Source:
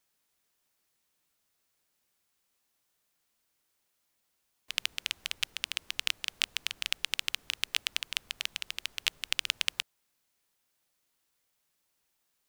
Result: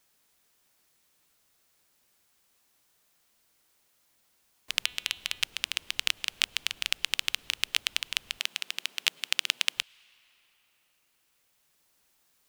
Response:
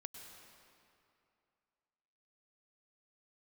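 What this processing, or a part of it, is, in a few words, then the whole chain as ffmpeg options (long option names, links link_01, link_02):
ducked reverb: -filter_complex "[0:a]asplit=3[link_01][link_02][link_03];[1:a]atrim=start_sample=2205[link_04];[link_02][link_04]afir=irnorm=-1:irlink=0[link_05];[link_03]apad=whole_len=550521[link_06];[link_05][link_06]sidechaincompress=threshold=-45dB:ratio=12:attack=38:release=1360,volume=4.5dB[link_07];[link_01][link_07]amix=inputs=2:normalize=0,asettb=1/sr,asplit=3[link_08][link_09][link_10];[link_08]atrim=end=4.834[link_11];[link_09]atrim=start=4.83:end=5.42,asetpts=PTS-STARTPTS,afade=type=in:duration=0.004:curve=qsin,afade=type=out:start_time=0.586:duration=0.004:curve=qsin,bandreject=frequency=247.2:width_type=h:width=4,bandreject=frequency=494.4:width_type=h:width=4,bandreject=frequency=741.6:width_type=h:width=4,bandreject=frequency=988.8:width_type=h:width=4,bandreject=frequency=1236:width_type=h:width=4,bandreject=frequency=1483.2:width_type=h:width=4,bandreject=frequency=1730.4:width_type=h:width=4,bandreject=frequency=1977.6:width_type=h:width=4,bandreject=frequency=2224.8:width_type=h:width=4,bandreject=frequency=2472:width_type=h:width=4,bandreject=frequency=2719.2:width_type=h:width=4,bandreject=frequency=2966.4:width_type=h:width=4,bandreject=frequency=3213.6:width_type=h:width=4,bandreject=frequency=3460.8:width_type=h:width=4,bandreject=frequency=3708:width_type=h:width=4,bandreject=frequency=3955.2:width_type=h:width=4,bandreject=frequency=4202.4:width_type=h:width=4[link_12];[link_10]atrim=start=5.416[link_13];[link_11][link_12]acrossfade=duration=0.004:curve1=hsin:curve2=qsin[link_14];[link_14][link_13]acrossfade=duration=0.004:curve1=qsin:curve2=hsin,asettb=1/sr,asplit=3[link_15][link_16][link_17];[link_15]atrim=end=8.394[link_18];[link_16]atrim=start=8.39:end=9.77,asetpts=PTS-STARTPTS,afade=type=in:duration=0.004:curve=qsin,afade=type=out:start_time=1.376:duration=0.004:curve=qsin,highpass=frequency=180:width=0.5412,highpass=frequency=180:width=1.3066[link_19];[link_17]atrim=start=9.766[link_20];[link_18][link_19]acrossfade=duration=0.004:curve1=hsin:curve2=qsin[link_21];[link_21][link_20]acrossfade=duration=0.004:curve1=qsin:curve2=hsin,volume=2.5dB"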